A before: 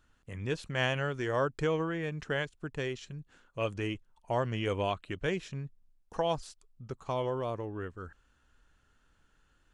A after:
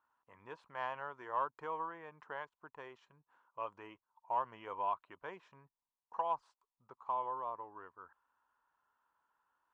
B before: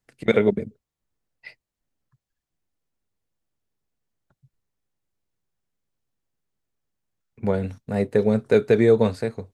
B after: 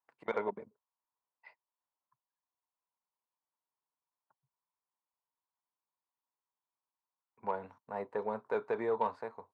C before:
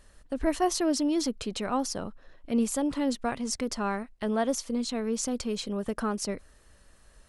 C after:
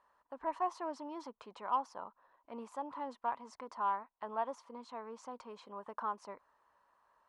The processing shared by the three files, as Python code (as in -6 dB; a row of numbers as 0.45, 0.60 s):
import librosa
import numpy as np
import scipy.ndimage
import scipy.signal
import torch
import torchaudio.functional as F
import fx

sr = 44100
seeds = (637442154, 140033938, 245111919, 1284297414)

y = fx.bandpass_q(x, sr, hz=980.0, q=6.4)
y = fx.cheby_harmonics(y, sr, harmonics=(5,), levels_db=(-28,), full_scale_db=-22.5)
y = y * librosa.db_to_amplitude(3.5)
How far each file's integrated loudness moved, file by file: -7.0, -16.0, -11.0 LU